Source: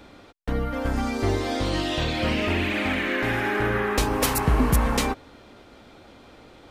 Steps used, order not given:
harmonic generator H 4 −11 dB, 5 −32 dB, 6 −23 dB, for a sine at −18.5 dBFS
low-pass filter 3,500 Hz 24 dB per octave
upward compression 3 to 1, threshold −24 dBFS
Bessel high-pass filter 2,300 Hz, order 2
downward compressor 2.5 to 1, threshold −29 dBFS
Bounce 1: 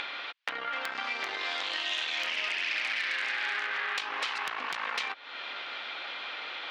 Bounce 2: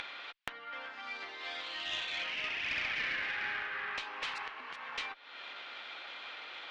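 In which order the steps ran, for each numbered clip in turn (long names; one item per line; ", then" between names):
downward compressor, then low-pass filter, then harmonic generator, then Bessel high-pass filter, then upward compression
low-pass filter, then downward compressor, then upward compression, then Bessel high-pass filter, then harmonic generator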